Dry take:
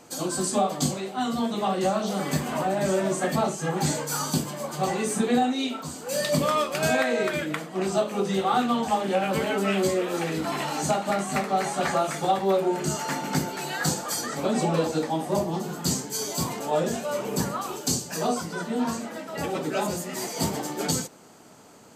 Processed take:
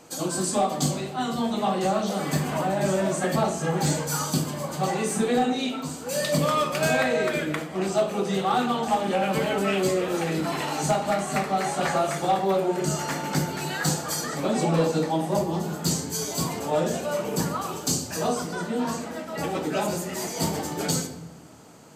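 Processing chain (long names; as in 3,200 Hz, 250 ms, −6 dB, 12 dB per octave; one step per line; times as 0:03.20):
rectangular room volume 720 cubic metres, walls mixed, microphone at 0.61 metres
hard clipping −15 dBFS, distortion −28 dB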